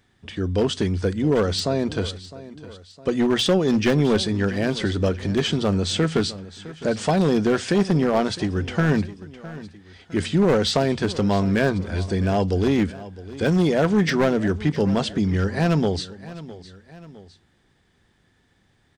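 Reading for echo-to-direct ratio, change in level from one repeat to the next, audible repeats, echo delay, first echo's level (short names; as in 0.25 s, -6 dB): -16.0 dB, -6.0 dB, 2, 0.659 s, -17.0 dB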